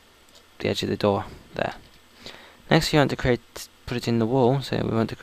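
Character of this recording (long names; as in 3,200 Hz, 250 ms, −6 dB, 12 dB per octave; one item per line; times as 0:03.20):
background noise floor −55 dBFS
spectral slope −5.0 dB per octave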